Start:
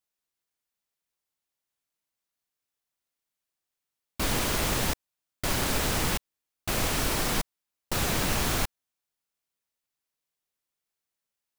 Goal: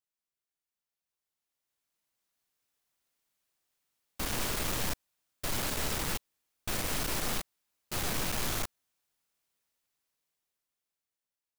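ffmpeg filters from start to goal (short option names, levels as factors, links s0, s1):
-af "aeval=exprs='(tanh(141*val(0)+0.8)-tanh(0.8))/141':c=same,dynaudnorm=f=330:g=11:m=4.47,volume=0.75"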